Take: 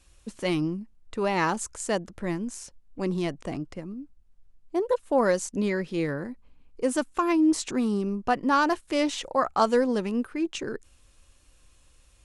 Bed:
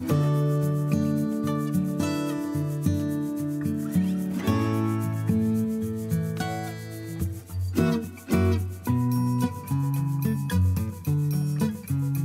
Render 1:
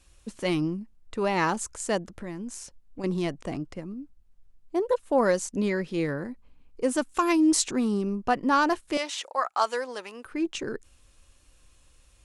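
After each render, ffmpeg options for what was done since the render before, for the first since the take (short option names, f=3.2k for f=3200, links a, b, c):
-filter_complex "[0:a]asettb=1/sr,asplit=3[a][b][c];[a]atrim=end=2.104[d];[b]atrim=start=2.1:end=3.04,asetpts=PTS-STARTPTS,afade=t=in:d=0.004:c=qsin,afade=t=out:st=0.936:d=0.004:c=qsin,acompressor=threshold=-32dB:ratio=4:attack=3.2:release=140:knee=1:detection=peak[e];[c]atrim=start=3.036[f];[d][e]acrossfade=d=0.004:c1=hsin:c2=qsin[g];[g][f]acrossfade=d=0.004:c1=qsin:c2=hsin,asettb=1/sr,asplit=3[h][i][j];[h]atrim=end=7.094[k];[i]atrim=start=7.09:end=7.67,asetpts=PTS-STARTPTS,afade=t=in:d=0.004:c=qsin,afade=t=out:st=0.576:d=0.004:c=qsin,highshelf=f=2.9k:g=9.5[l];[j]atrim=start=7.666[m];[k][l]acrossfade=d=0.004:c1=hsin:c2=qsin[n];[n][m]acrossfade=d=0.004:c1=qsin:c2=hsin,asettb=1/sr,asplit=3[o][p][q];[o]atrim=end=8.974[r];[p]atrim=start=8.97:end=10.25,asetpts=PTS-STARTPTS,afade=t=in:d=0.004:c=qsin,afade=t=out:st=1.276:d=0.004:c=qsin,highpass=760[s];[q]atrim=start=10.246[t];[r][s]acrossfade=d=0.004:c1=hsin:c2=qsin[u];[u][t]acrossfade=d=0.004:c1=qsin:c2=hsin"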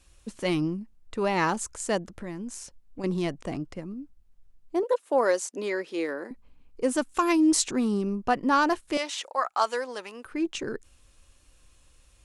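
-filter_complex "[0:a]asettb=1/sr,asplit=3[a][b][c];[a]atrim=end=4.834[d];[b]atrim=start=4.83:end=6.31,asetpts=PTS-STARTPTS,afade=t=in:d=0.004:c=qsin,afade=t=out:st=1.476:d=0.004:c=qsin,highpass=f=310:w=0.5412,highpass=f=310:w=1.3066[e];[c]atrim=start=6.306[f];[d][e]acrossfade=d=0.004:c1=hsin:c2=qsin[g];[g][f]acrossfade=d=0.004:c1=qsin:c2=hsin"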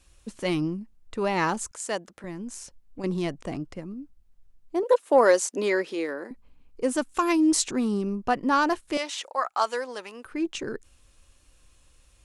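-filter_complex "[0:a]asettb=1/sr,asplit=3[a][b][c];[a]atrim=end=1.714[d];[b]atrim=start=1.71:end=2.24,asetpts=PTS-STARTPTS,afade=t=in:d=0.004:c=qsin,afade=t=out:st=0.526:d=0.004:c=qsin,highpass=f=540:p=1[e];[c]atrim=start=2.236[f];[d][e]acrossfade=d=0.004:c1=hsin:c2=qsin[g];[g][f]acrossfade=d=0.004:c1=qsin:c2=hsin,asplit=3[h][i][j];[h]afade=t=out:st=4.85:d=0.02[k];[i]acontrast=33,afade=t=in:st=4.85:d=0.02,afade=t=out:st=5.93:d=0.02[l];[j]afade=t=in:st=5.93:d=0.02[m];[k][l][m]amix=inputs=3:normalize=0"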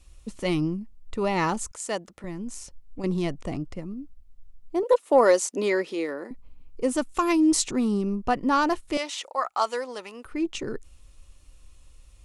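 -af "lowshelf=f=97:g=10,bandreject=f=1.6k:w=9"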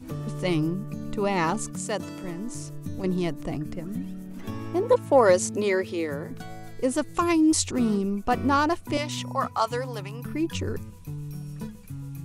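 -filter_complex "[1:a]volume=-11dB[a];[0:a][a]amix=inputs=2:normalize=0"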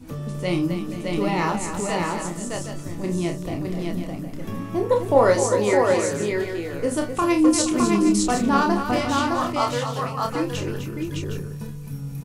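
-filter_complex "[0:a]asplit=2[a][b];[b]adelay=29,volume=-5.5dB[c];[a][c]amix=inputs=2:normalize=0,aecho=1:1:49|255|473|612|764:0.299|0.355|0.178|0.708|0.316"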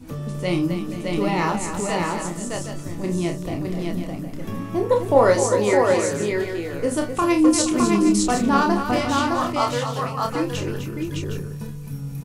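-af "volume=1dB"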